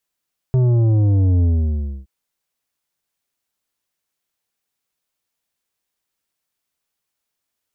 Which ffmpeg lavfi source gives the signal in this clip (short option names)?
-f lavfi -i "aevalsrc='0.224*clip((1.52-t)/0.63,0,1)*tanh(2.82*sin(2*PI*130*1.52/log(65/130)*(exp(log(65/130)*t/1.52)-1)))/tanh(2.82)':d=1.52:s=44100"